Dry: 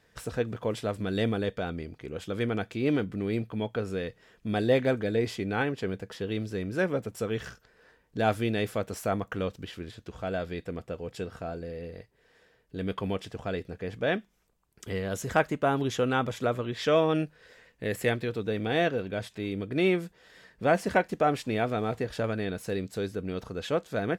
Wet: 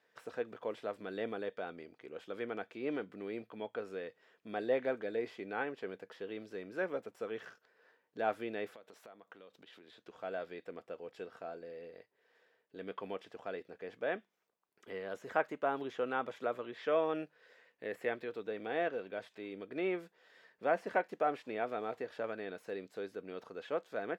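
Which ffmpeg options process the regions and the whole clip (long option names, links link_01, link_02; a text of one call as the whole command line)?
ffmpeg -i in.wav -filter_complex "[0:a]asettb=1/sr,asplit=3[link_01][link_02][link_03];[link_01]atrim=end=8.734[link_04];[link_02]atrim=start=8.73:end=10.02,asetpts=PTS-STARTPTS,afade=type=in:duration=0.004:curve=qsin,afade=type=out:start_time=1.286:duration=0.004:curve=qsin,highpass=120,equalizer=frequency=3700:width_type=o:width=0.32:gain=7,acompressor=threshold=-41dB:ratio=12:attack=3.2:release=140:knee=1:detection=peak[link_05];[link_03]atrim=start=10.016[link_06];[link_04][link_05]acrossfade=duration=0.004:curve1=hsin:curve2=qsin[link_07];[link_07][link_06]acrossfade=duration=0.004:curve1=qsin:curve2=hsin,acrossover=split=2600[link_08][link_09];[link_09]acompressor=threshold=-48dB:ratio=4:attack=1:release=60[link_10];[link_08][link_10]amix=inputs=2:normalize=0,highpass=380,equalizer=frequency=9600:width=0.53:gain=-10,volume=-6.5dB" out.wav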